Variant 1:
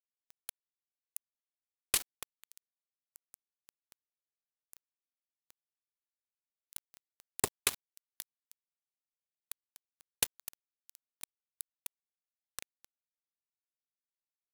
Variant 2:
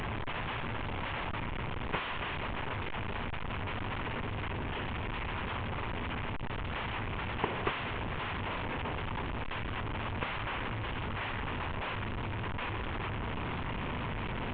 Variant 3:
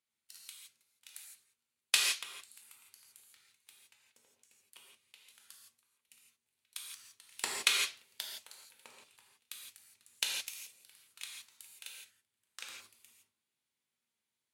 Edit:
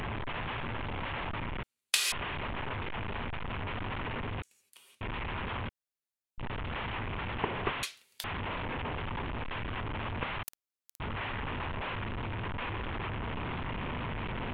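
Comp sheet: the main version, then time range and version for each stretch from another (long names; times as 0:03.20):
2
0:01.63–0:02.12: punch in from 3
0:04.42–0:05.01: punch in from 3
0:05.69–0:06.38: punch in from 1
0:07.83–0:08.24: punch in from 3
0:10.43–0:11.00: punch in from 1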